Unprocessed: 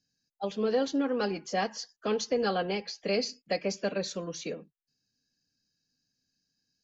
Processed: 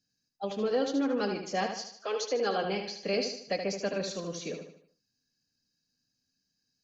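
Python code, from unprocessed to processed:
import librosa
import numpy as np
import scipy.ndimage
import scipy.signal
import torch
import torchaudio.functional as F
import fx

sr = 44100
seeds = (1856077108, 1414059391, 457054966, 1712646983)

y = fx.highpass(x, sr, hz=fx.line((1.96, 520.0), (2.63, 190.0)), slope=24, at=(1.96, 2.63), fade=0.02)
y = fx.echo_feedback(y, sr, ms=76, feedback_pct=43, wet_db=-7.0)
y = F.gain(torch.from_numpy(y), -1.5).numpy()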